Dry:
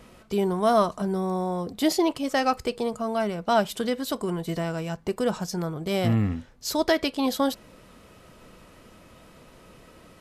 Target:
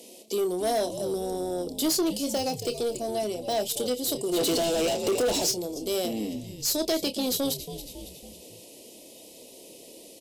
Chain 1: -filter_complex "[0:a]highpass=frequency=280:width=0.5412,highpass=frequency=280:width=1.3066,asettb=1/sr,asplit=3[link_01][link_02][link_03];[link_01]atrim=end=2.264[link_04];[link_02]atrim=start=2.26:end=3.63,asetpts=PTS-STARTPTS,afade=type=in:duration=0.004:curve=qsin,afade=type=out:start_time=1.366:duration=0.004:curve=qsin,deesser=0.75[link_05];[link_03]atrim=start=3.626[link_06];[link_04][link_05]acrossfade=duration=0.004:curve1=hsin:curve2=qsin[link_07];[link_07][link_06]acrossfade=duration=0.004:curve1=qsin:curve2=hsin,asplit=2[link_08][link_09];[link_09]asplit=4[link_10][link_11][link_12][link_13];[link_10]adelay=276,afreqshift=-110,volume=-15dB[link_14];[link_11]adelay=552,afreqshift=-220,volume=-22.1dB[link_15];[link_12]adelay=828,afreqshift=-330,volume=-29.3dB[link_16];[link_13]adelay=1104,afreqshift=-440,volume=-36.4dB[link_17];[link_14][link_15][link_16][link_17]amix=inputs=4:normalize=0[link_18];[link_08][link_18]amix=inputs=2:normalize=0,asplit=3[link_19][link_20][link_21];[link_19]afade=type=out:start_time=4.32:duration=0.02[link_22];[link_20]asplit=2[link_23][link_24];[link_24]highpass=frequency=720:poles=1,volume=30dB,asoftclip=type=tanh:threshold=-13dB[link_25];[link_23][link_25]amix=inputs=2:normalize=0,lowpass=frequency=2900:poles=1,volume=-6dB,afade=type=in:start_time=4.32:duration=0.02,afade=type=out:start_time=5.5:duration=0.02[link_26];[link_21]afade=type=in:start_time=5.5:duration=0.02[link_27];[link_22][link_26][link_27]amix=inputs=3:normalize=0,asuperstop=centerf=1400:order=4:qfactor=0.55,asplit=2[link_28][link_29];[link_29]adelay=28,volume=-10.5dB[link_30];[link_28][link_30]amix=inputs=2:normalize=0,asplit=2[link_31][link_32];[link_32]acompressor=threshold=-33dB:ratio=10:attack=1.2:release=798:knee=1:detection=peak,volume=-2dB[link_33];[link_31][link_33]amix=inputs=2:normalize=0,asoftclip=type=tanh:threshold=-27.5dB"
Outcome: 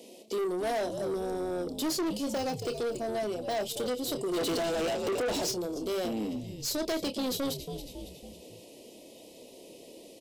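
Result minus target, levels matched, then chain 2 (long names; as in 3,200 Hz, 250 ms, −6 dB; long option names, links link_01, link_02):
soft clipping: distortion +6 dB; 8,000 Hz band −3.5 dB
-filter_complex "[0:a]highpass=frequency=280:width=0.5412,highpass=frequency=280:width=1.3066,asettb=1/sr,asplit=3[link_01][link_02][link_03];[link_01]atrim=end=2.264[link_04];[link_02]atrim=start=2.26:end=3.63,asetpts=PTS-STARTPTS,afade=type=in:duration=0.004:curve=qsin,afade=type=out:start_time=1.366:duration=0.004:curve=qsin,deesser=0.75[link_05];[link_03]atrim=start=3.626[link_06];[link_04][link_05]acrossfade=duration=0.004:curve1=hsin:curve2=qsin[link_07];[link_07][link_06]acrossfade=duration=0.004:curve1=qsin:curve2=hsin,asplit=2[link_08][link_09];[link_09]asplit=4[link_10][link_11][link_12][link_13];[link_10]adelay=276,afreqshift=-110,volume=-15dB[link_14];[link_11]adelay=552,afreqshift=-220,volume=-22.1dB[link_15];[link_12]adelay=828,afreqshift=-330,volume=-29.3dB[link_16];[link_13]adelay=1104,afreqshift=-440,volume=-36.4dB[link_17];[link_14][link_15][link_16][link_17]amix=inputs=4:normalize=0[link_18];[link_08][link_18]amix=inputs=2:normalize=0,asplit=3[link_19][link_20][link_21];[link_19]afade=type=out:start_time=4.32:duration=0.02[link_22];[link_20]asplit=2[link_23][link_24];[link_24]highpass=frequency=720:poles=1,volume=30dB,asoftclip=type=tanh:threshold=-13dB[link_25];[link_23][link_25]amix=inputs=2:normalize=0,lowpass=frequency=2900:poles=1,volume=-6dB,afade=type=in:start_time=4.32:duration=0.02,afade=type=out:start_time=5.5:duration=0.02[link_26];[link_21]afade=type=in:start_time=5.5:duration=0.02[link_27];[link_22][link_26][link_27]amix=inputs=3:normalize=0,asuperstop=centerf=1400:order=4:qfactor=0.55,equalizer=frequency=12000:width_type=o:width=2.1:gain=9.5,asplit=2[link_28][link_29];[link_29]adelay=28,volume=-10.5dB[link_30];[link_28][link_30]amix=inputs=2:normalize=0,asplit=2[link_31][link_32];[link_32]acompressor=threshold=-33dB:ratio=10:attack=1.2:release=798:knee=1:detection=peak,volume=-2dB[link_33];[link_31][link_33]amix=inputs=2:normalize=0,asoftclip=type=tanh:threshold=-20dB"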